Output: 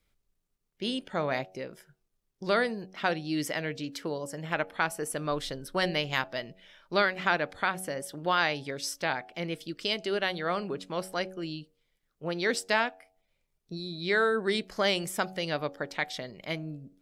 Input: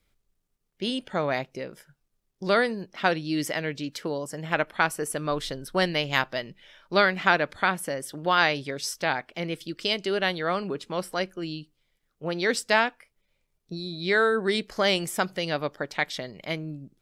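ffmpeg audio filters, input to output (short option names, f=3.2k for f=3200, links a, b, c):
-filter_complex "[0:a]bandreject=f=93.58:t=h:w=4,bandreject=f=187.16:t=h:w=4,bandreject=f=280.74:t=h:w=4,bandreject=f=374.32:t=h:w=4,bandreject=f=467.9:t=h:w=4,bandreject=f=561.48:t=h:w=4,bandreject=f=655.06:t=h:w=4,bandreject=f=748.64:t=h:w=4,bandreject=f=842.22:t=h:w=4,asplit=2[a][b];[b]alimiter=limit=-13dB:level=0:latency=1:release=323,volume=-2dB[c];[a][c]amix=inputs=2:normalize=0,volume=-8dB"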